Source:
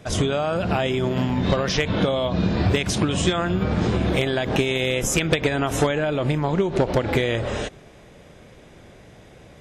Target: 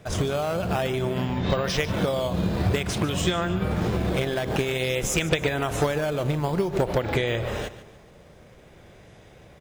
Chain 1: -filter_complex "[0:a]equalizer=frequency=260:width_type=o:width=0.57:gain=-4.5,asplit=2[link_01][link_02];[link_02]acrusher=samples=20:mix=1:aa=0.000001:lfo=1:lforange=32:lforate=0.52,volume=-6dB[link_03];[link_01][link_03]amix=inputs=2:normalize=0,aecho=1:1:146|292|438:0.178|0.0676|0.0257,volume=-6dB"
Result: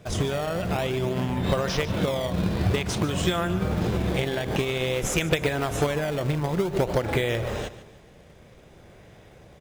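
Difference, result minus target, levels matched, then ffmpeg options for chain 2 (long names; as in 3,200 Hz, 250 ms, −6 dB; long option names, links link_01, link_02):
sample-and-hold swept by an LFO: distortion +7 dB
-filter_complex "[0:a]equalizer=frequency=260:width_type=o:width=0.57:gain=-4.5,asplit=2[link_01][link_02];[link_02]acrusher=samples=7:mix=1:aa=0.000001:lfo=1:lforange=11.2:lforate=0.52,volume=-6dB[link_03];[link_01][link_03]amix=inputs=2:normalize=0,aecho=1:1:146|292|438:0.178|0.0676|0.0257,volume=-6dB"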